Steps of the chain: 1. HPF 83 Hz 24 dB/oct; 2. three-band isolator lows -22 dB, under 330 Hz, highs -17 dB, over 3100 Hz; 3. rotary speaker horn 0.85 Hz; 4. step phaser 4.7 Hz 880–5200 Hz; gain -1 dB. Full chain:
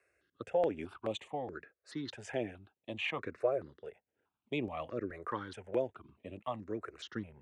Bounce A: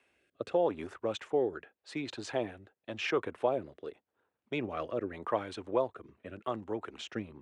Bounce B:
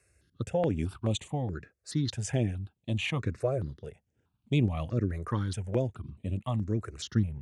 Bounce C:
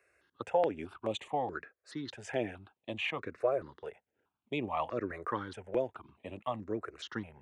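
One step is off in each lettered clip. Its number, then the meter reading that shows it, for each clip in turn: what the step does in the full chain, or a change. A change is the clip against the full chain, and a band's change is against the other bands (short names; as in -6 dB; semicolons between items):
4, 125 Hz band -2.0 dB; 2, 125 Hz band +18.0 dB; 3, 1 kHz band +3.5 dB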